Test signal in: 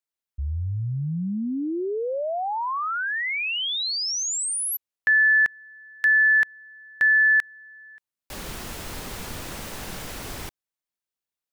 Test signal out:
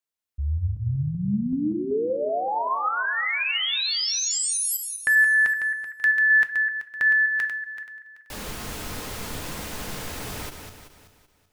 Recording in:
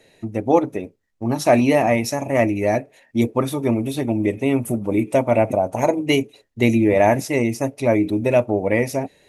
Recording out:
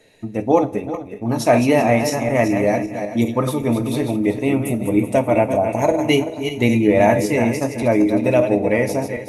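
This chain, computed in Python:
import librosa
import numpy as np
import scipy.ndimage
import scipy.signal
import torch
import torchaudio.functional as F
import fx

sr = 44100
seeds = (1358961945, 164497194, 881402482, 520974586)

y = fx.reverse_delay_fb(x, sr, ms=191, feedback_pct=50, wet_db=-7)
y = fx.rev_double_slope(y, sr, seeds[0], early_s=0.23, late_s=1.5, knee_db=-18, drr_db=8.5)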